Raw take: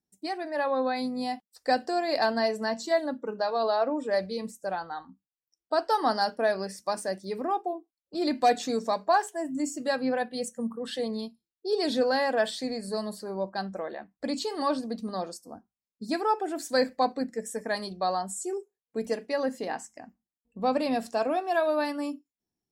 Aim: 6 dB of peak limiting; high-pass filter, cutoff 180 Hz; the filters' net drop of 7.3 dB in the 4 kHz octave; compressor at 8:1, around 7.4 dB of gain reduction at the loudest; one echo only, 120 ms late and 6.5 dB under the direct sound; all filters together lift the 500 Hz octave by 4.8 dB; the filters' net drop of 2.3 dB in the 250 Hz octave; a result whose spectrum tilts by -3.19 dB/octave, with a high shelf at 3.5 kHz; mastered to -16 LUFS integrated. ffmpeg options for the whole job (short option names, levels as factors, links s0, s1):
-af "highpass=180,equalizer=f=250:t=o:g=-4,equalizer=f=500:t=o:g=7,highshelf=f=3500:g=-3.5,equalizer=f=4000:t=o:g=-6,acompressor=threshold=0.0708:ratio=8,alimiter=limit=0.0944:level=0:latency=1,aecho=1:1:120:0.473,volume=5.31"